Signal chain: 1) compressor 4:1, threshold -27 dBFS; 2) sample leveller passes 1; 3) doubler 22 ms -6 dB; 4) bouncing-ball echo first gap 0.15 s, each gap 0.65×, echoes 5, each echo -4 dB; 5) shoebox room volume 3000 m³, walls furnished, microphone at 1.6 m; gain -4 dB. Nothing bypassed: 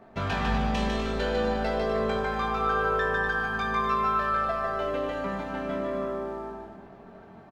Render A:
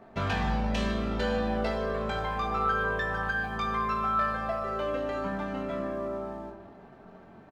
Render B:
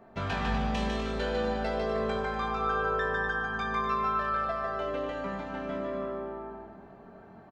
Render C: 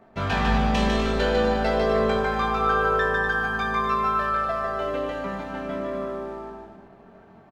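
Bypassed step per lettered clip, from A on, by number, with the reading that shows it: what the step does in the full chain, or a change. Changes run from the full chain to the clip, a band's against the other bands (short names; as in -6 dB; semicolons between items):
4, 125 Hz band +2.5 dB; 2, momentary loudness spread change +5 LU; 1, mean gain reduction 2.5 dB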